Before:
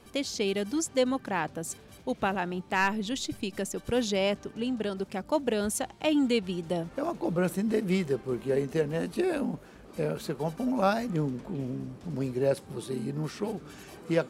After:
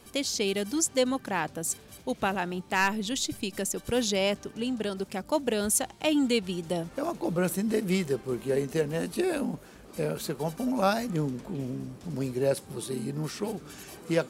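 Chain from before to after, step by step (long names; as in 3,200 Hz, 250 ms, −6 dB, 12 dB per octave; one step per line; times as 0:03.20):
high-shelf EQ 4,900 Hz +9.5 dB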